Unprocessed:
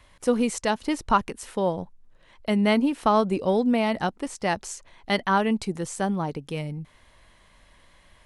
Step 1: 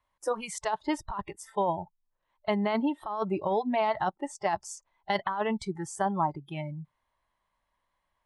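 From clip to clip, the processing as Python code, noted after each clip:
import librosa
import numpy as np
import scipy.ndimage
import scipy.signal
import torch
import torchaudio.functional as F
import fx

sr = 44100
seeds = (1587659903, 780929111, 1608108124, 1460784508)

y = fx.noise_reduce_blind(x, sr, reduce_db=22)
y = fx.peak_eq(y, sr, hz=950.0, db=12.0, octaves=1.1)
y = fx.over_compress(y, sr, threshold_db=-19.0, ratio=-1.0)
y = y * librosa.db_to_amplitude(-8.0)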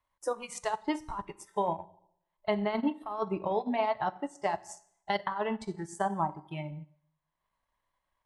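y = fx.rev_plate(x, sr, seeds[0], rt60_s=0.73, hf_ratio=0.85, predelay_ms=0, drr_db=8.0)
y = fx.transient(y, sr, attack_db=2, sustain_db=-8)
y = y * librosa.db_to_amplitude(-3.5)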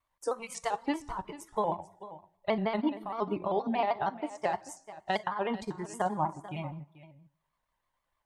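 y = x + 10.0 ** (-16.0 / 20.0) * np.pad(x, (int(439 * sr / 1000.0), 0))[:len(x)]
y = fx.vibrato_shape(y, sr, shape='square', rate_hz=6.4, depth_cents=100.0)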